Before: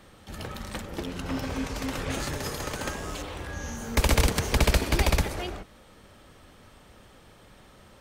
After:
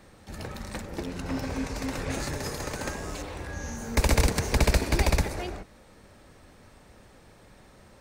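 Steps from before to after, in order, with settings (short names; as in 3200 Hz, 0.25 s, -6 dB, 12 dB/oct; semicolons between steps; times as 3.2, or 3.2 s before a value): thirty-one-band EQ 1250 Hz -4 dB, 3150 Hz -8 dB, 12500 Hz -5 dB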